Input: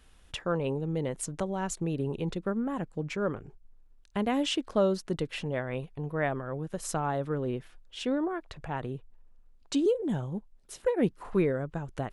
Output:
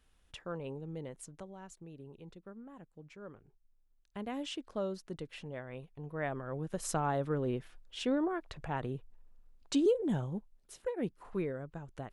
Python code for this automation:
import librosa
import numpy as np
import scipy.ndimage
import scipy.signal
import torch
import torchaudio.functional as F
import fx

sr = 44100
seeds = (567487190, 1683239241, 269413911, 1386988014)

y = fx.gain(x, sr, db=fx.line((0.98, -11.0), (1.77, -19.0), (3.17, -19.0), (4.32, -11.0), (5.87, -11.0), (6.71, -2.0), (10.22, -2.0), (10.91, -9.5)))